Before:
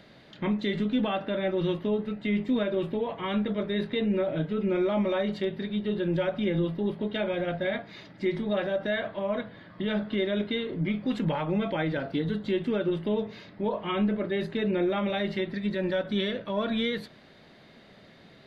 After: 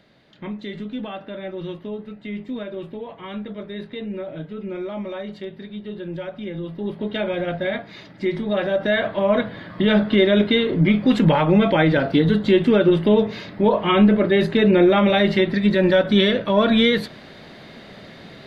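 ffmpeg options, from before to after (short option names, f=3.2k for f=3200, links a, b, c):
-af "volume=12dB,afade=t=in:st=6.62:d=0.5:silence=0.375837,afade=t=in:st=8.47:d=0.97:silence=0.446684"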